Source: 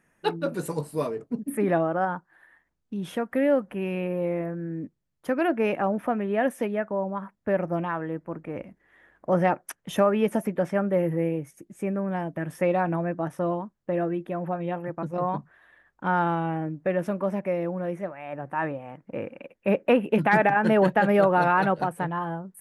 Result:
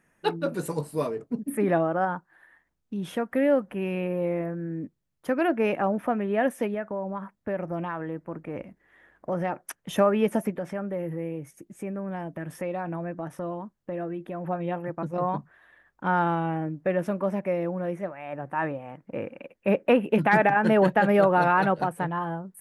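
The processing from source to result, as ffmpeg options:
-filter_complex "[0:a]asettb=1/sr,asplit=3[s0][s1][s2];[s0]atrim=end=6.744[s3];[s1]atrim=start=6.74:end=9.55,asetpts=PTS-STARTPTS,afade=t=in:d=0.004:c=qsin,afade=t=out:st=2.806:d=0.004:c=qsin,acompressor=threshold=0.0355:ratio=2:attack=3.2:release=140:knee=1:detection=peak[s4];[s2]atrim=start=9.546[s5];[s3][s4]acrossfade=d=0.004:c1=hsin:c2=qsin[s6];[s6][s5]acrossfade=d=0.004:c1=qsin:c2=hsin,asettb=1/sr,asplit=3[s7][s8][s9];[s7]atrim=end=10.504[s10];[s8]atrim=start=10.5:end=14.45,asetpts=PTS-STARTPTS,afade=t=in:d=0.004:c=qsin,afade=t=out:st=3.946:d=0.004:c=qsin,acompressor=threshold=0.0224:ratio=2:attack=3.2:release=140:knee=1:detection=peak[s11];[s9]atrim=start=14.446[s12];[s10][s11]acrossfade=d=0.004:c1=hsin:c2=qsin[s13];[s13][s12]acrossfade=d=0.004:c1=qsin:c2=hsin"

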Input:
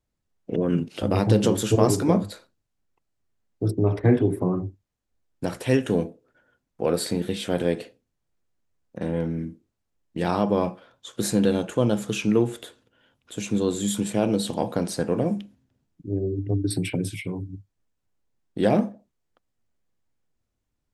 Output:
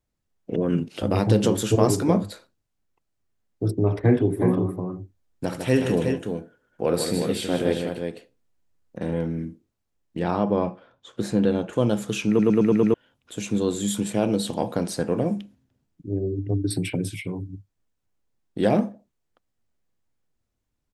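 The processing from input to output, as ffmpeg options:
-filter_complex "[0:a]asplit=3[s0][s1][s2];[s0]afade=t=out:st=4.38:d=0.02[s3];[s1]aecho=1:1:72|153|364:0.266|0.447|0.473,afade=t=in:st=4.38:d=0.02,afade=t=out:st=9.13:d=0.02[s4];[s2]afade=t=in:st=9.13:d=0.02[s5];[s3][s4][s5]amix=inputs=3:normalize=0,asettb=1/sr,asplit=3[s6][s7][s8];[s6]atrim=end=10.194[s9];[s7]atrim=start=10.19:end=11.73,asetpts=PTS-STARTPTS,afade=t=in:d=0.004:c=qsin,afade=t=out:st=1.536:d=0.004:c=qsin,aemphasis=mode=reproduction:type=75kf[s10];[s8]atrim=start=11.726[s11];[s9][s10]acrossfade=d=0.004:c1=hsin:c2=qsin[s12];[s12][s11]acrossfade=d=0.004:c1=qsin:c2=hsin,asplit=7[s13][s14][s15][s16][s17][s18][s19];[s13]atrim=end=12.392[s20];[s14]atrim=start=12.278:end=12.392[s21];[s15]atrim=start=12.278:end=12.392[s22];[s16]atrim=start=12.278:end=12.392[s23];[s17]atrim=start=12.278:end=12.392[s24];[s18]atrim=start=12.278:end=12.392[s25];[s19]atrim=start=12.938[s26];[s20][s21]acrossfade=d=0.004:c1=hsin:c2=hsin[s27];[s27][s22]acrossfade=d=0.004:c1=hsin:c2=hsin[s28];[s28][s23]acrossfade=d=0.004:c1=hsin:c2=hsin[s29];[s29][s24]acrossfade=d=0.004:c1=hsin:c2=hsin[s30];[s30][s25]acrossfade=d=0.004:c1=hsin:c2=hsin[s31];[s31][s26]acrossfade=d=0.004:c1=hsin:c2=hsin"

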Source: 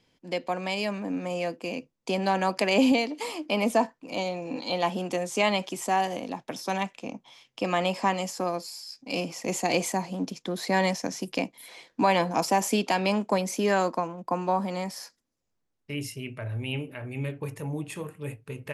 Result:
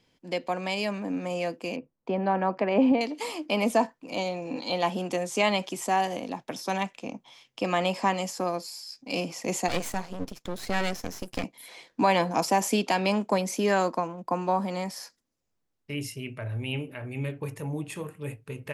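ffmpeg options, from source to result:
-filter_complex "[0:a]asettb=1/sr,asplit=3[s0][s1][s2];[s0]atrim=end=1.764[s3];[s1]atrim=start=1.76:end=3.01,asetpts=PTS-STARTPTS,afade=t=in:d=0.004:c=qsin,afade=t=out:st=1.246:d=0.004:c=qsin,lowpass=1500[s4];[s2]atrim=start=3.006[s5];[s3][s4]acrossfade=d=0.004:c1=hsin:c2=qsin[s6];[s6][s5]acrossfade=d=0.004:c1=qsin:c2=hsin,asettb=1/sr,asplit=3[s7][s8][s9];[s7]atrim=end=9.684[s10];[s8]atrim=start=9.68:end=11.44,asetpts=PTS-STARTPTS,afade=t=in:d=0.004:c=qsin,afade=t=out:st=1.756:d=0.004:c=qsin,aeval=exprs='max(val(0),0)':c=same[s11];[s9]atrim=start=11.436[s12];[s10][s11]acrossfade=d=0.004:c1=hsin:c2=qsin[s13];[s13][s12]acrossfade=d=0.004:c1=qsin:c2=hsin"

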